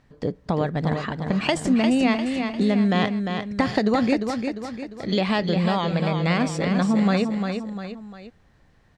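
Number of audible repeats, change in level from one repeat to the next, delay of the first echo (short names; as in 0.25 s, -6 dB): 3, -6.5 dB, 0.35 s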